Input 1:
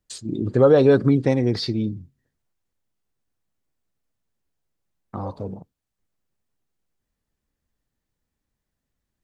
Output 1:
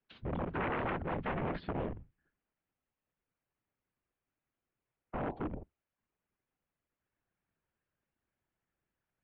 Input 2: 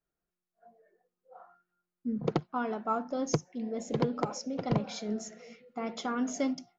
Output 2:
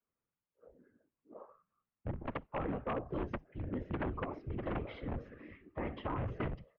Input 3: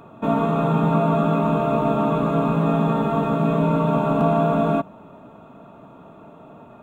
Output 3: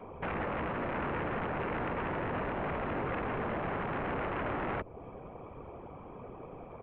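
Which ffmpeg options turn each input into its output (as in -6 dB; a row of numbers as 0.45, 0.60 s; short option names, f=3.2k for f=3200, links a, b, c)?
-filter_complex "[0:a]acontrast=27,afftfilt=real='hypot(re,im)*cos(2*PI*random(0))':imag='hypot(re,im)*sin(2*PI*random(1))':win_size=512:overlap=0.75,acrossover=split=260|820[a][b][c];[a]acompressor=threshold=-27dB:ratio=4[d];[b]acompressor=threshold=-29dB:ratio=4[e];[c]acompressor=threshold=-41dB:ratio=4[f];[d][e][f]amix=inputs=3:normalize=0,aresample=16000,aeval=exprs='0.0376*(abs(mod(val(0)/0.0376+3,4)-2)-1)':c=same,aresample=44100,highpass=f=250:t=q:w=0.5412,highpass=f=250:t=q:w=1.307,lowpass=f=3k:t=q:w=0.5176,lowpass=f=3k:t=q:w=0.7071,lowpass=f=3k:t=q:w=1.932,afreqshift=-190"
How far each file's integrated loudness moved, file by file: -19.0, -7.0, -15.0 LU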